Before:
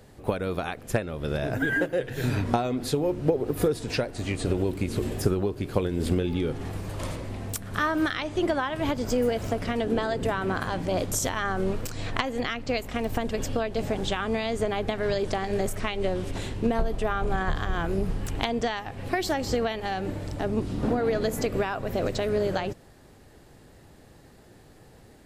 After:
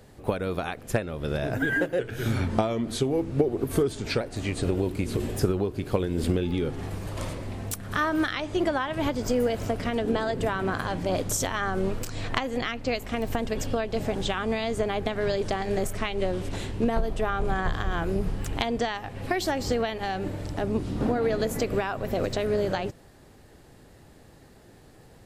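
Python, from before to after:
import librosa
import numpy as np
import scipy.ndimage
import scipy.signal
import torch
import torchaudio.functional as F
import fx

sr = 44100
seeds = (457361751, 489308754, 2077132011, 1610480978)

y = fx.edit(x, sr, fx.speed_span(start_s=1.99, length_s=2.04, speed=0.92), tone=tone)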